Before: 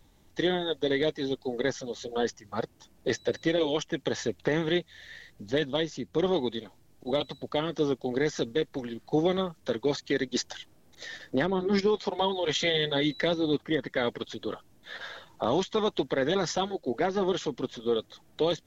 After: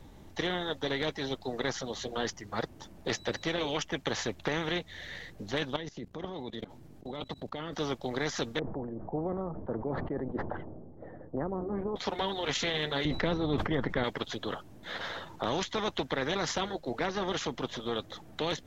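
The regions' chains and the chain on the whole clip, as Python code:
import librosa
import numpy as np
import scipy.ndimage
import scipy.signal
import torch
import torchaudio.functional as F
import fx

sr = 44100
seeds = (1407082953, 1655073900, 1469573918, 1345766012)

y = fx.chain(x, sr, fx.peak_eq(hz=200.0, db=5.5, octaves=1.8),
    fx.level_steps(step_db=20), at=(5.76, 7.73))
y = fx.chain(y, sr, fx.bessel_lowpass(hz=550.0, order=4),
    fx.sustainer(db_per_s=53.0), at=(8.59, 11.96))
y = fx.chain(y, sr, fx.tilt_eq(slope=-4.5),
    fx.sustainer(db_per_s=98.0), at=(13.05, 14.04))
y = fx.high_shelf(y, sr, hz=2300.0, db=-10.0)
y = fx.spectral_comp(y, sr, ratio=2.0)
y = y * 10.0 ** (-6.5 / 20.0)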